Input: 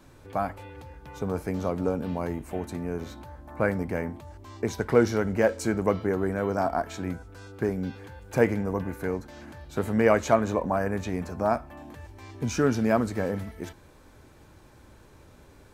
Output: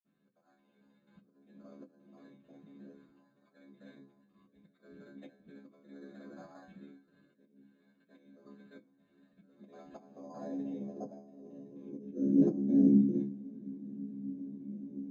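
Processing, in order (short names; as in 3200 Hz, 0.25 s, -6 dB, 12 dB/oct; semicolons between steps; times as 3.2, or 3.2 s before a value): local time reversal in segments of 46 ms; LPF 3300 Hz 12 dB/oct; whisperiser; metallic resonator 65 Hz, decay 0.43 s, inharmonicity 0.002; auto swell 0.532 s; high-pass sweep 1300 Hz -> 250 Hz, 9.69–13.48; sample-and-hold 8×; speed mistake 24 fps film run at 25 fps; reverb, pre-delay 46 ms, DRR -60 dB; gain +5.5 dB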